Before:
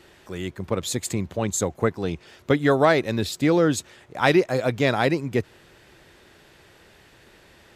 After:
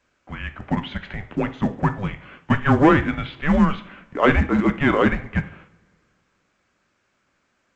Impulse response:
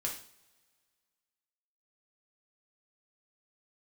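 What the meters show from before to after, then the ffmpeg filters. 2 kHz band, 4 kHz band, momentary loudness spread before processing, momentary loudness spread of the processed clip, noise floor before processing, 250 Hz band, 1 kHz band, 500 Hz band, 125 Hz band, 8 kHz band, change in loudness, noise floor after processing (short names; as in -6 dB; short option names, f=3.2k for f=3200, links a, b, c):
+3.0 dB, -4.0 dB, 14 LU, 18 LU, -54 dBFS, +4.0 dB, +3.0 dB, -2.5 dB, +3.5 dB, under -20 dB, +2.0 dB, -69 dBFS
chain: -filter_complex "[0:a]agate=range=-22dB:threshold=-48dB:ratio=16:detection=peak,asoftclip=type=tanh:threshold=-11dB,highpass=f=440:t=q:w=0.5412,highpass=f=440:t=q:w=1.307,lowpass=f=3k:t=q:w=0.5176,lowpass=f=3k:t=q:w=0.7071,lowpass=f=3k:t=q:w=1.932,afreqshift=-300,asplit=2[a][b];[1:a]atrim=start_sample=2205[c];[b][c]afir=irnorm=-1:irlink=0,volume=-5dB[d];[a][d]amix=inputs=2:normalize=0,volume=3.5dB" -ar 16000 -c:a pcm_alaw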